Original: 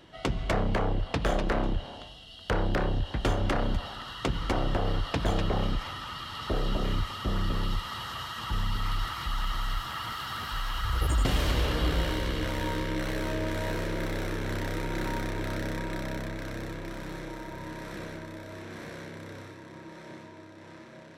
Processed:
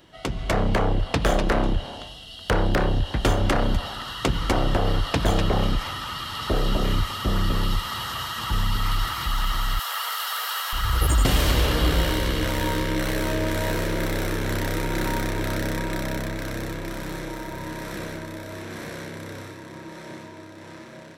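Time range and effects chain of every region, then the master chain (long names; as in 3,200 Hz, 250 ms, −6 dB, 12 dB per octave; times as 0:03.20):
0:09.79–0:10.73: Chebyshev high-pass filter 460 Hz, order 6 + high-shelf EQ 6,500 Hz +7.5 dB
whole clip: high-shelf EQ 8,200 Hz +10 dB; automatic gain control gain up to 6 dB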